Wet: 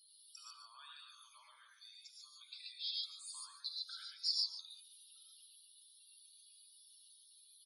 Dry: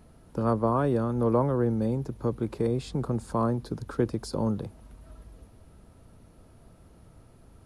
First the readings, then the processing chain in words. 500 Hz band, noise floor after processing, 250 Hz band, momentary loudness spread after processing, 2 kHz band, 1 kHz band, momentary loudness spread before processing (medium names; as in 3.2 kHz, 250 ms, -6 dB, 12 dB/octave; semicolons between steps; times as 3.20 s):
under -40 dB, -65 dBFS, under -40 dB, 22 LU, -15.0 dB, -29.5 dB, 8 LU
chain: compression 6:1, threshold -34 dBFS, peak gain reduction 14 dB; ladder high-pass 2.9 kHz, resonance 35%; loudest bins only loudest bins 32; delay 145 ms -13.5 dB; gated-style reverb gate 160 ms rising, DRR -1.5 dB; trim +17 dB